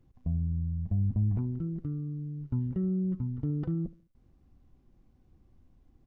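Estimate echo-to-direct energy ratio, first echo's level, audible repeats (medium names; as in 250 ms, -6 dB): -18.5 dB, -19.0 dB, 2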